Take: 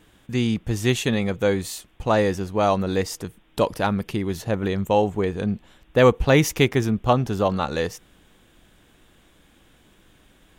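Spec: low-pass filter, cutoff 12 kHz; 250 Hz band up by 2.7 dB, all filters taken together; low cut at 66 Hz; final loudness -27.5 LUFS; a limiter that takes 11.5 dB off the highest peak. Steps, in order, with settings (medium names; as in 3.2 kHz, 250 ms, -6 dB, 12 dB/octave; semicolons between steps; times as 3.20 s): high-pass 66 Hz; low-pass 12 kHz; peaking EQ 250 Hz +3.5 dB; trim -1.5 dB; peak limiter -16 dBFS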